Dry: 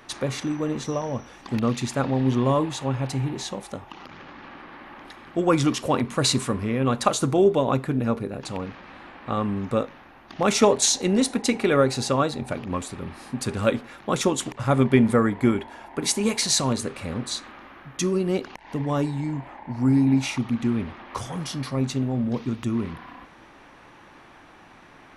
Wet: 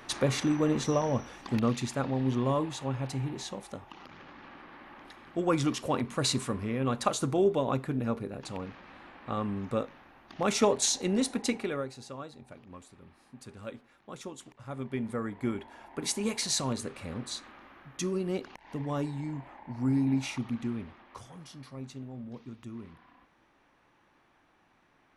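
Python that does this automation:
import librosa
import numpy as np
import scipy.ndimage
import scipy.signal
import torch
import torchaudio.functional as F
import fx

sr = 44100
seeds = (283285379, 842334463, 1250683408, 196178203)

y = fx.gain(x, sr, db=fx.line((1.18, 0.0), (2.01, -7.0), (11.5, -7.0), (11.95, -20.0), (14.64, -20.0), (15.82, -8.0), (20.49, -8.0), (21.35, -17.0)))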